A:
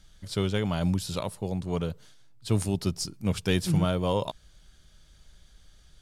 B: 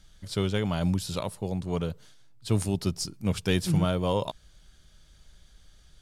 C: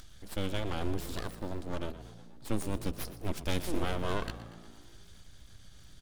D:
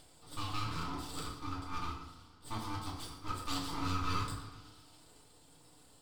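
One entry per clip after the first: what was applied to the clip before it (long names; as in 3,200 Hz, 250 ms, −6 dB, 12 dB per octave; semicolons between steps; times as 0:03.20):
no processing that can be heard
upward compression, threshold −37 dBFS; full-wave rectification; echo with shifted repeats 119 ms, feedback 62%, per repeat +57 Hz, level −15 dB; level −4.5 dB
pair of resonant band-passes 1,600 Hz, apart 2.7 octaves; full-wave rectification; feedback delay network reverb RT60 0.7 s, low-frequency decay 1.25×, high-frequency decay 0.65×, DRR −5.5 dB; level +6.5 dB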